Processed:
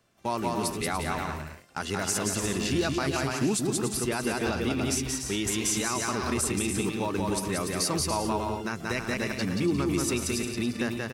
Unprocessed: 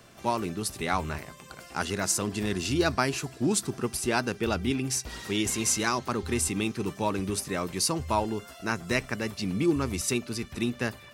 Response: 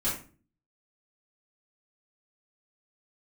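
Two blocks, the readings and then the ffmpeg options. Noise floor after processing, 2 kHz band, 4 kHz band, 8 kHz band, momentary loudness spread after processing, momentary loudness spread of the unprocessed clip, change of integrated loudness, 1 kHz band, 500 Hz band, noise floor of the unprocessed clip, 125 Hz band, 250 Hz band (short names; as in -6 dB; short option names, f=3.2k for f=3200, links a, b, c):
-41 dBFS, 0.0 dB, +0.5 dB, +0.5 dB, 5 LU, 7 LU, +0.5 dB, -0.5 dB, +0.5 dB, -49 dBFS, +0.5 dB, +1.0 dB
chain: -filter_complex "[0:a]agate=range=-15dB:threshold=-38dB:ratio=16:detection=peak,asplit=2[a][b];[b]aecho=0:1:180|288|352.8|391.7|415:0.631|0.398|0.251|0.158|0.1[c];[a][c]amix=inputs=2:normalize=0,alimiter=limit=-17dB:level=0:latency=1:release=72"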